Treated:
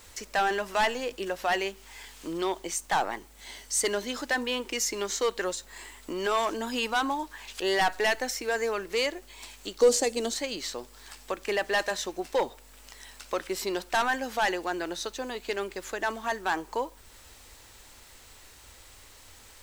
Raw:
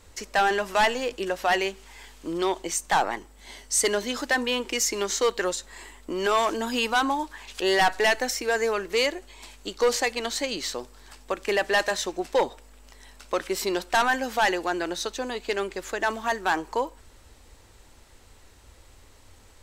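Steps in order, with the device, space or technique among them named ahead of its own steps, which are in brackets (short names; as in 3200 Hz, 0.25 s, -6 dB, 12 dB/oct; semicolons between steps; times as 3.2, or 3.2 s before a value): noise-reduction cassette on a plain deck (mismatched tape noise reduction encoder only; wow and flutter 15 cents; white noise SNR 29 dB); 9.81–10.34 graphic EQ 250/500/1000/2000/8000 Hz +7/+6/-5/-6/+9 dB; gain -4 dB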